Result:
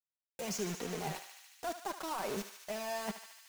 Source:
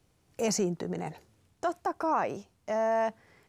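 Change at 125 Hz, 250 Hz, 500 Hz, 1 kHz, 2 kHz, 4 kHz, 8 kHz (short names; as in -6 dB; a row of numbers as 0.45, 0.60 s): -6.0, -8.0, -10.0, -9.5, -4.0, -0.5, -4.0 dB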